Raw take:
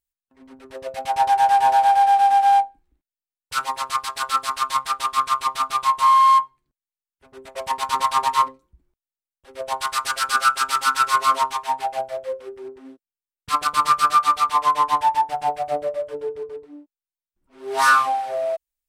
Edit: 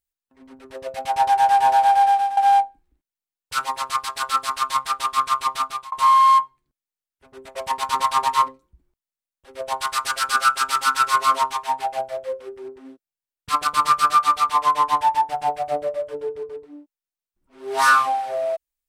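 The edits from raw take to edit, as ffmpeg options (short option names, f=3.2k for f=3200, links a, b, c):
-filter_complex "[0:a]asplit=3[a][b][c];[a]atrim=end=2.37,asetpts=PTS-STARTPTS,afade=t=out:st=2.07:d=0.3:silence=0.188365[d];[b]atrim=start=2.37:end=5.92,asetpts=PTS-STARTPTS,afade=t=in:d=0.004:c=hsin:silence=0.188365,afade=t=out:st=3.21:d=0.34[e];[c]atrim=start=5.92,asetpts=PTS-STARTPTS,afade=t=in:d=0.004:c=hsin[f];[d][e][f]concat=n=3:v=0:a=1"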